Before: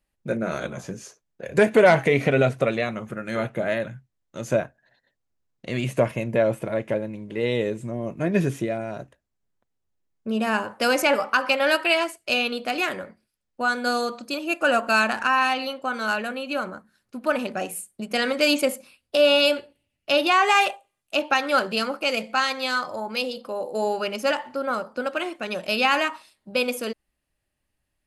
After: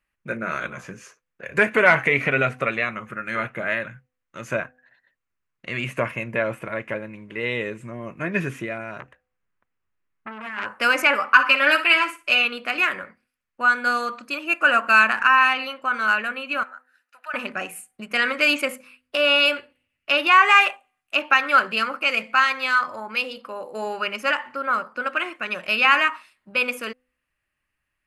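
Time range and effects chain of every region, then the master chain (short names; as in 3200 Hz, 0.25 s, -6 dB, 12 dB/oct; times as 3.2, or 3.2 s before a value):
9–10.66 high shelf 4400 Hz -9 dB + negative-ratio compressor -29 dBFS + core saturation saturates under 2200 Hz
11.33–12.45 notch 800 Hz, Q 25 + comb 6.8 ms, depth 60% + flutter echo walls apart 10.1 m, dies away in 0.27 s
16.63–17.34 HPF 720 Hz 24 dB/oct + compressor 1.5:1, threshold -48 dBFS + notch comb 1100 Hz
whole clip: band shelf 1700 Hz +11.5 dB; de-hum 252.5 Hz, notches 3; gain -5 dB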